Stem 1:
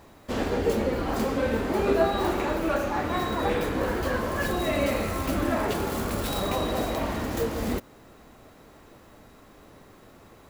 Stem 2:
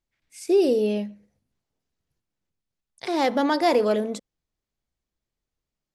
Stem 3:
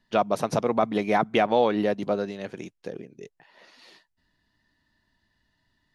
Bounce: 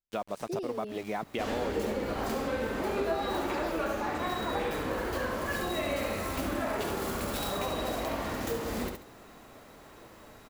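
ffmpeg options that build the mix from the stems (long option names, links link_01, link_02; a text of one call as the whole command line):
ffmpeg -i stem1.wav -i stem2.wav -i stem3.wav -filter_complex "[0:a]lowshelf=frequency=350:gain=-5.5,adelay=1100,volume=1dB,asplit=2[link_01][link_02];[link_02]volume=-6.5dB[link_03];[1:a]volume=-13.5dB[link_04];[2:a]aeval=exprs='val(0)*gte(abs(val(0)),0.0224)':channel_layout=same,volume=-8dB[link_05];[link_03]aecho=0:1:69|138|207:1|0.21|0.0441[link_06];[link_01][link_04][link_05][link_06]amix=inputs=4:normalize=0,acompressor=threshold=-33dB:ratio=2" out.wav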